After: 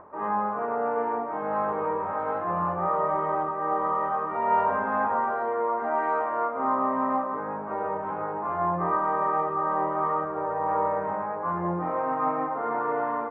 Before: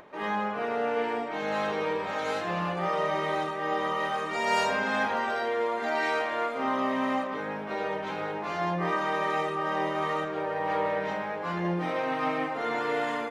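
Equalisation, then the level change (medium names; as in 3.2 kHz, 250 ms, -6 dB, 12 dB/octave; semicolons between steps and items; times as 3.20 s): four-pole ladder low-pass 1.3 kHz, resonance 50%; peaking EQ 89 Hz +13.5 dB 0.21 oct; +8.5 dB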